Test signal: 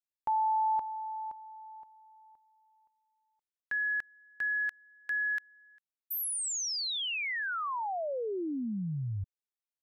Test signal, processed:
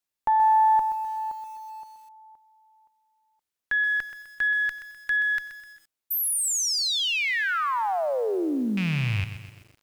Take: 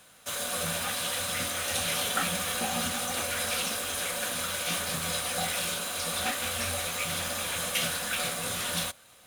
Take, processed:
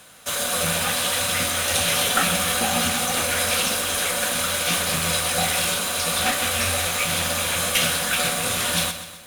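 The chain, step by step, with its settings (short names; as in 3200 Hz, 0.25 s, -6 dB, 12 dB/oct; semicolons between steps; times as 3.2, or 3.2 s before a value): rattling part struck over -40 dBFS, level -29 dBFS; added harmonics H 2 -17 dB, 4 -26 dB, 6 -28 dB, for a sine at -14.5 dBFS; lo-fi delay 0.127 s, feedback 55%, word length 9-bit, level -11 dB; gain +8 dB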